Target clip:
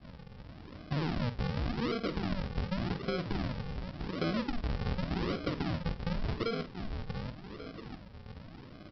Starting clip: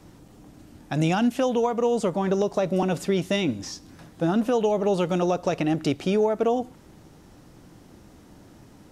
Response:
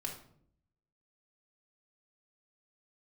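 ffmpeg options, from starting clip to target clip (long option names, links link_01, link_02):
-filter_complex "[0:a]asoftclip=type=hard:threshold=-18.5dB,asplit=2[link_01][link_02];[link_02]aecho=0:1:686|1372|2058:0.178|0.064|0.023[link_03];[link_01][link_03]amix=inputs=2:normalize=0,adynamicequalizer=threshold=0.0158:dfrequency=290:dqfactor=0.75:tfrequency=290:tqfactor=0.75:attack=5:release=100:ratio=0.375:range=2.5:mode=cutabove:tftype=bell,aresample=11025,acrusher=samples=23:mix=1:aa=0.000001:lfo=1:lforange=23:lforate=0.88,aresample=44100,acompressor=threshold=-31dB:ratio=6,asplit=2[link_04][link_05];[link_05]adelay=49,volume=-11dB[link_06];[link_04][link_06]amix=inputs=2:normalize=0"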